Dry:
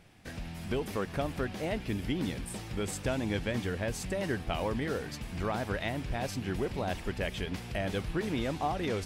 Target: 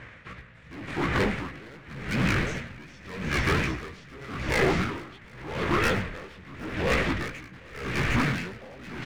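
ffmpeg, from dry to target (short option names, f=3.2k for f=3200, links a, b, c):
-filter_complex "[0:a]highpass=f=81:p=1,aemphasis=mode=production:type=50fm,asplit=2[a][b];[b]alimiter=level_in=1.5dB:limit=-24dB:level=0:latency=1:release=58,volume=-1.5dB,volume=-1dB[c];[a][c]amix=inputs=2:normalize=0,acontrast=85,asetrate=31183,aresample=44100,atempo=1.41421,aeval=exprs='0.355*(cos(1*acos(clip(val(0)/0.355,-1,1)))-cos(1*PI/2))+0.0355*(cos(3*acos(clip(val(0)/0.355,-1,1)))-cos(3*PI/2))+0.00562*(cos(8*acos(clip(val(0)/0.355,-1,1)))-cos(8*PI/2))':c=same,lowpass=f=2.1k:t=q:w=2.4,flanger=delay=15.5:depth=8:speed=2.7,asoftclip=type=hard:threshold=-27dB,asplit=2[d][e];[e]asetrate=55563,aresample=44100,atempo=0.793701,volume=-11dB[f];[d][f]amix=inputs=2:normalize=0,aecho=1:1:108|457|758|857:0.224|0.335|0.422|0.178,aeval=exprs='val(0)*pow(10,-23*(0.5-0.5*cos(2*PI*0.86*n/s))/20)':c=same,volume=6dB"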